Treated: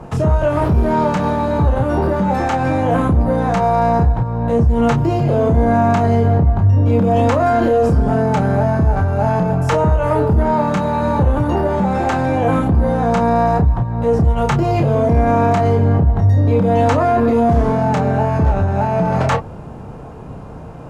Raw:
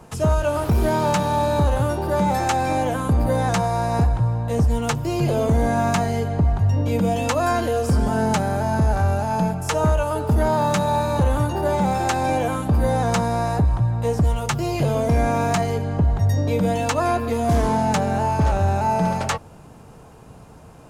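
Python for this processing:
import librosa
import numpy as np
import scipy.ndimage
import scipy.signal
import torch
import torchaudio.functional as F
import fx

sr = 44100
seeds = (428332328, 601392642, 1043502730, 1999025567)

p1 = fx.lowpass(x, sr, hz=1100.0, slope=6)
p2 = fx.over_compress(p1, sr, threshold_db=-25.0, ratio=-0.5)
p3 = p1 + F.gain(torch.from_numpy(p2), -1.5).numpy()
p4 = 10.0 ** (-10.5 / 20.0) * np.tanh(p3 / 10.0 ** (-10.5 / 20.0))
p5 = fx.doubler(p4, sr, ms=30.0, db=-5.5)
y = F.gain(torch.from_numpy(p5), 3.5).numpy()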